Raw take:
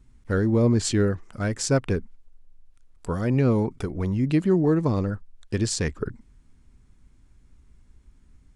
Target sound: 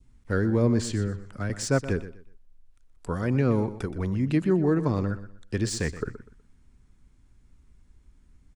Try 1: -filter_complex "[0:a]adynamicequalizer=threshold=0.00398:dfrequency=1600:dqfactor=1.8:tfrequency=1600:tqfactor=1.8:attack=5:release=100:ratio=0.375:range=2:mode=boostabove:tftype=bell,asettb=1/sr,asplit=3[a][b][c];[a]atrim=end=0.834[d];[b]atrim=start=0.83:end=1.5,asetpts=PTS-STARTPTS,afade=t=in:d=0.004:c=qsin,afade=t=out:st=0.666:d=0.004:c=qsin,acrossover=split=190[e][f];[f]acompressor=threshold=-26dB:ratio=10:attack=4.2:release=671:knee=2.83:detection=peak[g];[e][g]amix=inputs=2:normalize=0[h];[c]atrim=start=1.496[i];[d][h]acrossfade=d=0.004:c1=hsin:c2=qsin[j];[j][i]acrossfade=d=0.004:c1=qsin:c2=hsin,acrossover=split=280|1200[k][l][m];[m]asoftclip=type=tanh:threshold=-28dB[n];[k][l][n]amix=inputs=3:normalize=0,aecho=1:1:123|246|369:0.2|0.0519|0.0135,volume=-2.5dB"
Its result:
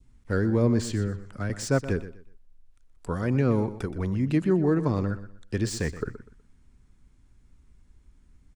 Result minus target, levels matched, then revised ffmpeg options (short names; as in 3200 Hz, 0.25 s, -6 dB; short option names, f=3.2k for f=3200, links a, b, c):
soft clip: distortion +6 dB
-filter_complex "[0:a]adynamicequalizer=threshold=0.00398:dfrequency=1600:dqfactor=1.8:tfrequency=1600:tqfactor=1.8:attack=5:release=100:ratio=0.375:range=2:mode=boostabove:tftype=bell,asettb=1/sr,asplit=3[a][b][c];[a]atrim=end=0.834[d];[b]atrim=start=0.83:end=1.5,asetpts=PTS-STARTPTS,afade=t=in:d=0.004:c=qsin,afade=t=out:st=0.666:d=0.004:c=qsin,acrossover=split=190[e][f];[f]acompressor=threshold=-26dB:ratio=10:attack=4.2:release=671:knee=2.83:detection=peak[g];[e][g]amix=inputs=2:normalize=0[h];[c]atrim=start=1.496[i];[d][h]acrossfade=d=0.004:c1=hsin:c2=qsin[j];[j][i]acrossfade=d=0.004:c1=qsin:c2=hsin,acrossover=split=280|1200[k][l][m];[m]asoftclip=type=tanh:threshold=-22dB[n];[k][l][n]amix=inputs=3:normalize=0,aecho=1:1:123|246|369:0.2|0.0519|0.0135,volume=-2.5dB"